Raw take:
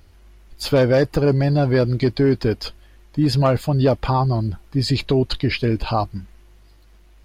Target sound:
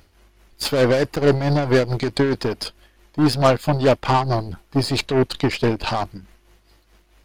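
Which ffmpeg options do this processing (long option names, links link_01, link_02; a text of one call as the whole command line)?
ffmpeg -i in.wav -af "aeval=exprs='0.447*(cos(1*acos(clip(val(0)/0.447,-1,1)))-cos(1*PI/2))+0.0501*(cos(8*acos(clip(val(0)/0.447,-1,1)))-cos(8*PI/2))':channel_layout=same,tremolo=f=4.6:d=0.58,lowshelf=frequency=140:gain=-9,volume=3.5dB" out.wav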